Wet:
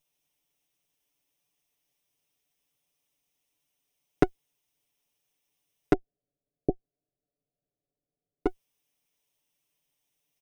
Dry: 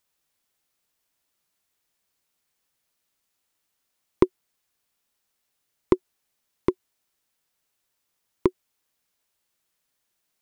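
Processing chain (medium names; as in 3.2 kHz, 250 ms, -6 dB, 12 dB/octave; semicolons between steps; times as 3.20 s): comb filter that takes the minimum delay 0.33 ms; 5.93–8.46 s: steep low-pass 730 Hz 96 dB/octave; comb 6.9 ms, depth 99%; trim -4 dB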